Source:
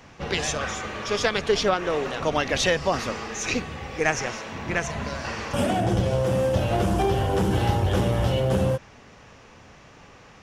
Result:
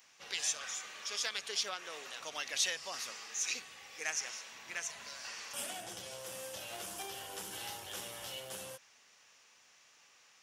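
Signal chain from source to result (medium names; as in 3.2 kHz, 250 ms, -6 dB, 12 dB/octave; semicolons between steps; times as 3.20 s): differentiator; trim -2 dB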